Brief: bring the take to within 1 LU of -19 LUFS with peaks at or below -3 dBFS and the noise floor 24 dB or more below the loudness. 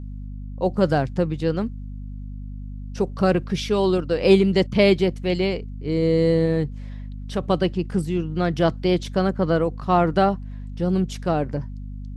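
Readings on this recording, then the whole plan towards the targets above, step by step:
hum 50 Hz; highest harmonic 250 Hz; hum level -31 dBFS; loudness -22.0 LUFS; peak level -4.5 dBFS; loudness target -19.0 LUFS
-> hum notches 50/100/150/200/250 Hz; trim +3 dB; peak limiter -3 dBFS

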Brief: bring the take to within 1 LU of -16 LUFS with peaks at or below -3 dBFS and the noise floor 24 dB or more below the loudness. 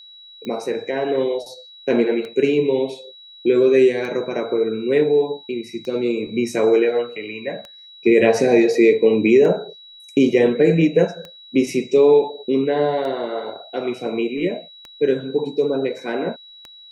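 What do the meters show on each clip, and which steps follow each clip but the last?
clicks found 10; steady tone 3.9 kHz; tone level -41 dBFS; loudness -19.0 LUFS; peak level -3.0 dBFS; loudness target -16.0 LUFS
-> de-click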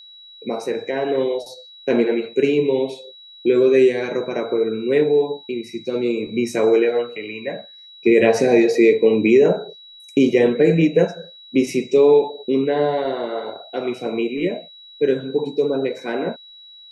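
clicks found 0; steady tone 3.9 kHz; tone level -41 dBFS
-> band-stop 3.9 kHz, Q 30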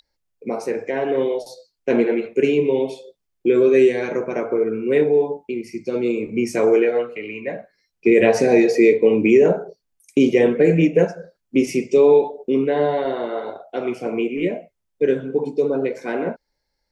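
steady tone not found; loudness -19.0 LUFS; peak level -3.0 dBFS; loudness target -16.0 LUFS
-> trim +3 dB; peak limiter -3 dBFS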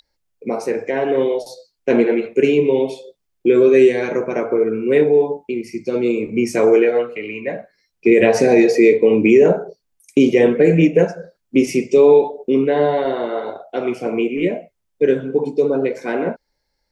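loudness -16.5 LUFS; peak level -3.0 dBFS; noise floor -73 dBFS

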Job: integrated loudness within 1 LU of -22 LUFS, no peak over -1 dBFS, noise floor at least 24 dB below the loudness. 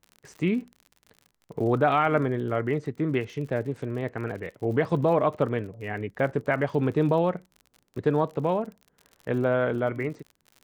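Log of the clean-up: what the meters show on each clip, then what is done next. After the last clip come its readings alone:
tick rate 51 per s; loudness -27.0 LUFS; peak level -10.5 dBFS; loudness target -22.0 LUFS
-> de-click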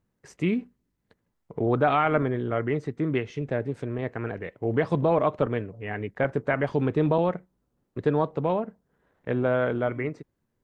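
tick rate 0 per s; loudness -27.0 LUFS; peak level -10.5 dBFS; loudness target -22.0 LUFS
-> trim +5 dB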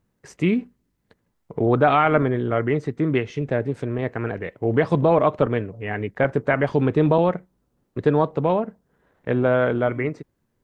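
loudness -22.0 LUFS; peak level -5.5 dBFS; noise floor -72 dBFS

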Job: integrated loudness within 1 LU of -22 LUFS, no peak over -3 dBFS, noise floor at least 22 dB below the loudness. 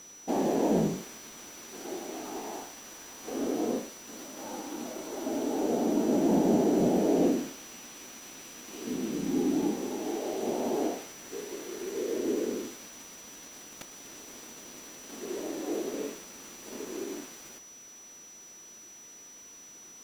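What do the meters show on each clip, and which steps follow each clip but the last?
steady tone 5.9 kHz; tone level -48 dBFS; loudness -31.0 LUFS; peak level -13.5 dBFS; loudness target -22.0 LUFS
-> band-stop 5.9 kHz, Q 30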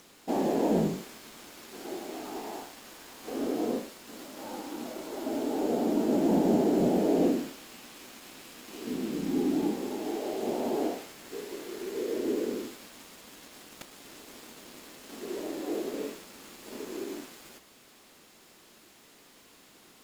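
steady tone not found; loudness -31.0 LUFS; peak level -13.5 dBFS; loudness target -22.0 LUFS
-> trim +9 dB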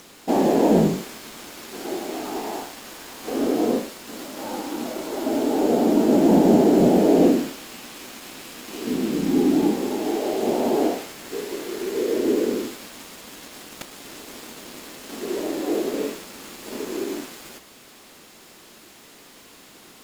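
loudness -22.0 LUFS; peak level -4.5 dBFS; noise floor -48 dBFS

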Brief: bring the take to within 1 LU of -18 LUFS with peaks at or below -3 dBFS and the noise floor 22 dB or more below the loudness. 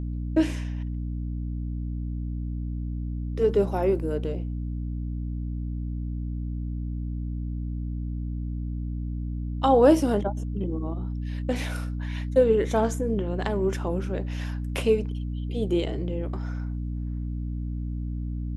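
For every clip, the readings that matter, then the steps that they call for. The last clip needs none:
hum 60 Hz; highest harmonic 300 Hz; hum level -28 dBFS; loudness -28.0 LUFS; peak level -6.5 dBFS; loudness target -18.0 LUFS
-> de-hum 60 Hz, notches 5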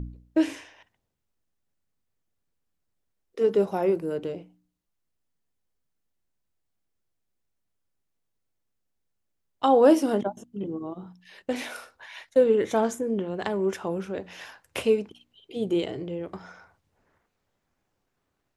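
hum not found; loudness -26.0 LUFS; peak level -7.0 dBFS; loudness target -18.0 LUFS
-> trim +8 dB; peak limiter -3 dBFS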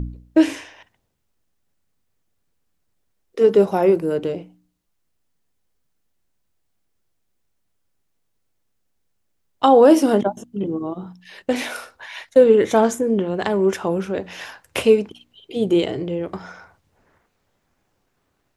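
loudness -18.5 LUFS; peak level -3.0 dBFS; noise floor -70 dBFS

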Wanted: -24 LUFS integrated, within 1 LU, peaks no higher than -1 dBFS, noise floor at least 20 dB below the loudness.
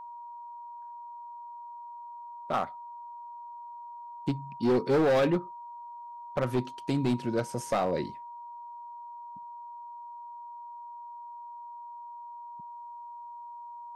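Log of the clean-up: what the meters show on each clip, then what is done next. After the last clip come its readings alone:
clipped samples 1.0%; clipping level -20.5 dBFS; steady tone 950 Hz; tone level -41 dBFS; loudness -34.0 LUFS; peak level -20.5 dBFS; loudness target -24.0 LUFS
-> clip repair -20.5 dBFS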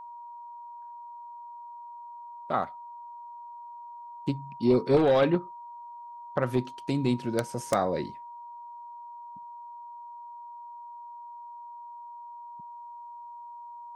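clipped samples 0.0%; steady tone 950 Hz; tone level -41 dBFS
-> band-stop 950 Hz, Q 30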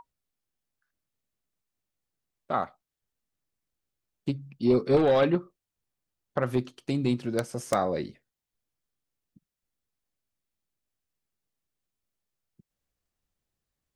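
steady tone not found; loudness -27.5 LUFS; peak level -11.0 dBFS; loudness target -24.0 LUFS
-> trim +3.5 dB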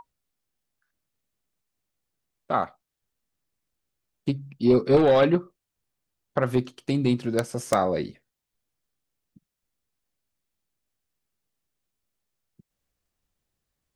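loudness -24.0 LUFS; peak level -7.5 dBFS; noise floor -85 dBFS

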